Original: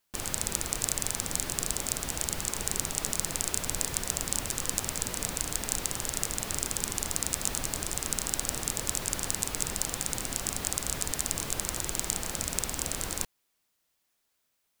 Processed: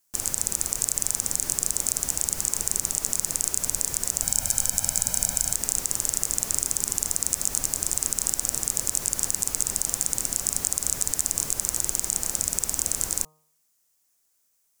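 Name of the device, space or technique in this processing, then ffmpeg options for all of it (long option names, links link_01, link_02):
over-bright horn tweeter: -filter_complex "[0:a]bandreject=frequency=154.6:width_type=h:width=4,bandreject=frequency=309.2:width_type=h:width=4,bandreject=frequency=463.8:width_type=h:width=4,bandreject=frequency=618.4:width_type=h:width=4,bandreject=frequency=773:width_type=h:width=4,bandreject=frequency=927.6:width_type=h:width=4,bandreject=frequency=1082.2:width_type=h:width=4,bandreject=frequency=1236.8:width_type=h:width=4,asettb=1/sr,asplit=3[link_01][link_02][link_03];[link_01]atrim=end=4.224[link_04];[link_02]atrim=start=4.22:end=5.54,asetpts=PTS-STARTPTS,afade=type=in:duration=0.004:curve=qsin,afade=type=out:start_time=1.316:duration=0.004:curve=qsin,aecho=1:1:1.3:0.72,atrim=end_sample=58212[link_05];[link_03]atrim=start=5.536[link_06];[link_04][link_05]acrossfade=duration=0.004:curve1=hsin:curve2=qsin[link_07];[link_07][link_06]acrossfade=duration=0.004:curve1=qsin:curve2=hsin,highshelf=frequency=4900:width_type=q:width=1.5:gain=8.5,alimiter=limit=-0.5dB:level=0:latency=1:release=53,volume=-1dB"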